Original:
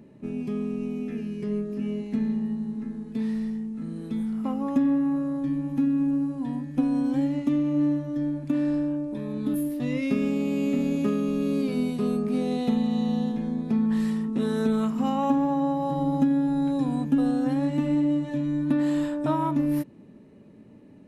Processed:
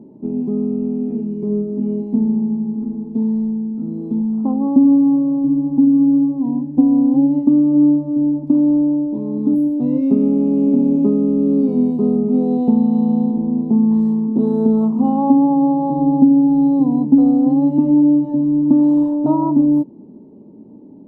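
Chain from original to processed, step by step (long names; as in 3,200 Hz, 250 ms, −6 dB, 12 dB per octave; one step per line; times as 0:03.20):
drawn EQ curve 110 Hz 0 dB, 240 Hz +11 dB, 350 Hz +12 dB, 570 Hz +4 dB, 910 Hz +8 dB, 1,600 Hz −23 dB, 3,200 Hz −18 dB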